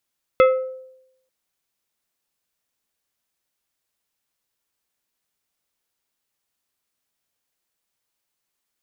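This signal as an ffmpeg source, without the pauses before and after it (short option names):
-f lavfi -i "aevalsrc='0.376*pow(10,-3*t/0.82)*sin(2*PI*519*t)+0.188*pow(10,-3*t/0.432)*sin(2*PI*1297.5*t)+0.0944*pow(10,-3*t/0.311)*sin(2*PI*2076*t)+0.0473*pow(10,-3*t/0.266)*sin(2*PI*2595*t)+0.0237*pow(10,-3*t/0.221)*sin(2*PI*3373.5*t)':d=0.89:s=44100"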